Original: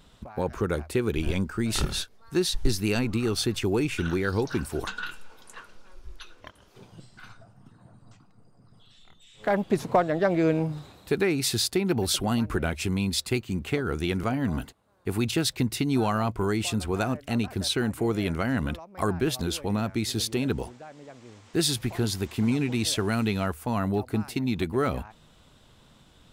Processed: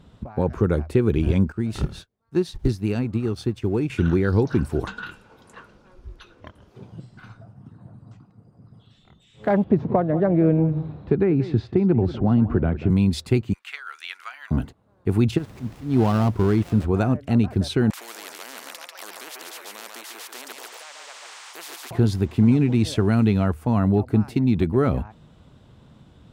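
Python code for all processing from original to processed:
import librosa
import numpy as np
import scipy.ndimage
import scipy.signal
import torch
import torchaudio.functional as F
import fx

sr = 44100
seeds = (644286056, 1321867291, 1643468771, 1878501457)

y = fx.chain(x, sr, fx.law_mismatch(coded='A'),
    fx.upward_expand(threshold_db=-45.0, expansion=1.5), at=(1.52, 3.9))
y = fx.chain(y, sr, fx.spacing_loss(db_at_10k=38),
    fx.echo_single(ms=186, db=-15.5),
    fx.band_squash(depth_pct=40), at=(9.64, 12.9))
y = fx.chain(y, sr, fx.highpass(hz=1300.0, slope=24),
    fx.peak_eq(hz=3200.0, db=3.0, octaves=1.6), at=(13.53, 14.51))
y = fx.dead_time(y, sr, dead_ms=0.17, at=(15.37, 16.85), fade=0.02)
y = fx.auto_swell(y, sr, attack_ms=205.0, at=(15.37, 16.85), fade=0.02)
y = fx.dmg_noise_colour(y, sr, seeds[0], colour='pink', level_db=-49.0, at=(15.37, 16.85), fade=0.02)
y = fx.chain(y, sr, fx.highpass(hz=1400.0, slope=24),
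    fx.echo_single(ms=142, db=-9.5),
    fx.spectral_comp(ratio=10.0), at=(17.9, 21.91))
y = scipy.signal.sosfilt(scipy.signal.butter(2, 83.0, 'highpass', fs=sr, output='sos'), y)
y = fx.tilt_eq(y, sr, slope=-3.0)
y = F.gain(torch.from_numpy(y), 1.5).numpy()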